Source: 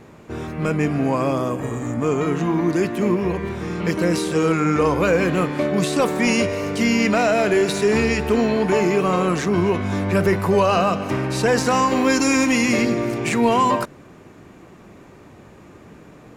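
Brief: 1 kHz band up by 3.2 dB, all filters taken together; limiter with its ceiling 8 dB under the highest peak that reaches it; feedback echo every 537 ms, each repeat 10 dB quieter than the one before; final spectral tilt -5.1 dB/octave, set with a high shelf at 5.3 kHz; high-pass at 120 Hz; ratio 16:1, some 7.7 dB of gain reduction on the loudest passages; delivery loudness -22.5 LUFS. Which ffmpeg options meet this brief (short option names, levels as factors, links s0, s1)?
-af "highpass=120,equalizer=f=1000:t=o:g=4,highshelf=f=5300:g=-4.5,acompressor=threshold=0.112:ratio=16,alimiter=limit=0.141:level=0:latency=1,aecho=1:1:537|1074|1611|2148:0.316|0.101|0.0324|0.0104,volume=1.41"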